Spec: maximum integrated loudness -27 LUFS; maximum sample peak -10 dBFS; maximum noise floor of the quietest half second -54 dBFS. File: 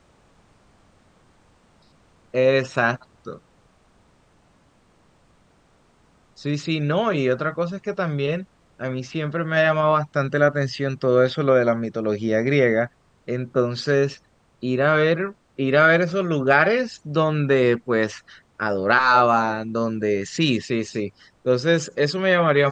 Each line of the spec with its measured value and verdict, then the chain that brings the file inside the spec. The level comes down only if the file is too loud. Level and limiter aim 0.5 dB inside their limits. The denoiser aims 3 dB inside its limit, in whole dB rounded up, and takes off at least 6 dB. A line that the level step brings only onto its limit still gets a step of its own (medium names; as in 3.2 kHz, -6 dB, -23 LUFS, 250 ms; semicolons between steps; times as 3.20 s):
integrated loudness -21.0 LUFS: fail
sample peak -3.0 dBFS: fail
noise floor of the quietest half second -59 dBFS: pass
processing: trim -6.5 dB; peak limiter -10.5 dBFS